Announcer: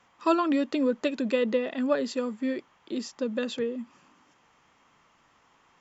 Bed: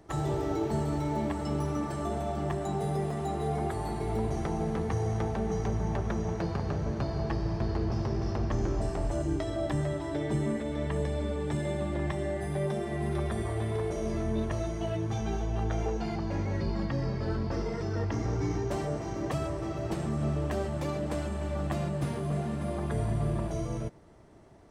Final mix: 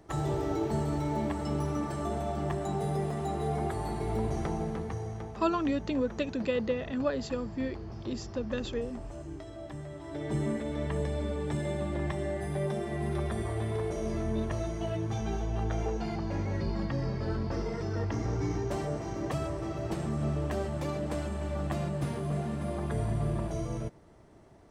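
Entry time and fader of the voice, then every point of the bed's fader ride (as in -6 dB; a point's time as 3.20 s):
5.15 s, -4.5 dB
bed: 4.48 s -0.5 dB
5.42 s -11.5 dB
9.89 s -11.5 dB
10.38 s -1 dB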